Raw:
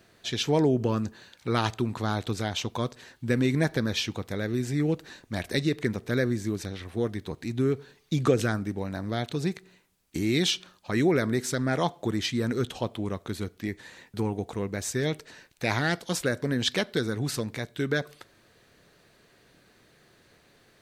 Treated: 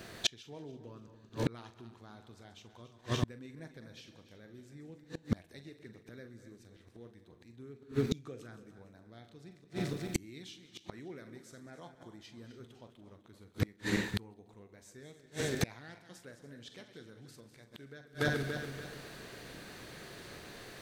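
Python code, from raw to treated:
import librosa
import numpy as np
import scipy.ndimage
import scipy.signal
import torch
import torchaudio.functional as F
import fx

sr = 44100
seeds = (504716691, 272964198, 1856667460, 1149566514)

y = fx.reverse_delay_fb(x, sr, ms=144, feedback_pct=61, wet_db=-11.0)
y = fx.echo_multitap(y, sr, ms=(43, 132, 197), db=(-11.0, -19.0, -17.5))
y = fx.gate_flip(y, sr, shuts_db=-26.0, range_db=-35)
y = y * 10.0 ** (10.0 / 20.0)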